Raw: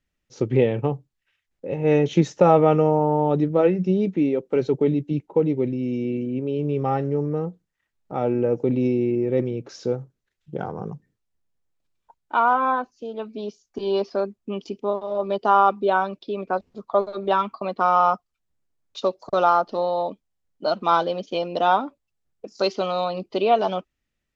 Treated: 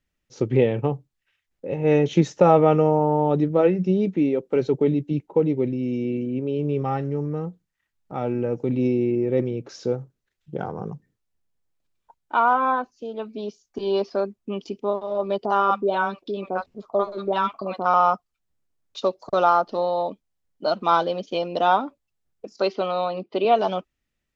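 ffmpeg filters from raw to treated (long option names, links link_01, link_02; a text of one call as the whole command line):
ffmpeg -i in.wav -filter_complex "[0:a]asettb=1/sr,asplit=3[link_01][link_02][link_03];[link_01]atrim=end=6.824[link_04];[link_02]atrim=start=6.82:end=8.79,asetpts=PTS-STARTPTS,afade=type=in:duration=0.004:curve=qsin,afade=type=out:start_time=1.966:duration=0.004:curve=qsin,equalizer=frequency=490:width=0.84:gain=-4.5[link_05];[link_03]atrim=start=8.786[link_06];[link_04][link_05]acrossfade=duration=0.004:curve1=hsin:curve2=qsin[link_07];[link_07][link_06]acrossfade=duration=0.004:curve1=qsin:curve2=hsin,asettb=1/sr,asplit=3[link_08][link_09][link_10];[link_08]atrim=end=15.454[link_11];[link_09]atrim=start=15.45:end=17.94,asetpts=PTS-STARTPTS,afade=type=in:duration=0.004:curve=qsin,afade=type=out:start_time=2.486:duration=0.004:curve=qsin,acrossover=split=770[link_12][link_13];[link_13]adelay=50[link_14];[link_12][link_14]amix=inputs=2:normalize=0,atrim=end_sample=109809[link_15];[link_10]atrim=start=17.936[link_16];[link_11][link_15]acrossfade=duration=0.004:curve1=hsin:curve2=qsin[link_17];[link_17][link_16]acrossfade=duration=0.004:curve1=qsin:curve2=hsin,asettb=1/sr,asplit=3[link_18][link_19][link_20];[link_18]atrim=end=22.564[link_21];[link_19]atrim=start=22.56:end=23.45,asetpts=PTS-STARTPTS,afade=type=in:duration=0.004:curve=qsin,afade=type=out:start_time=0.886:duration=0.004:curve=qsin,highpass=170,lowpass=3500[link_22];[link_20]atrim=start=23.446[link_23];[link_21][link_22]acrossfade=duration=0.004:curve1=hsin:curve2=qsin[link_24];[link_24][link_23]acrossfade=duration=0.004:curve1=qsin:curve2=hsin" out.wav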